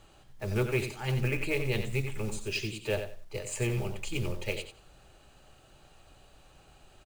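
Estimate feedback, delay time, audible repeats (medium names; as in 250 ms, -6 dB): 18%, 90 ms, 2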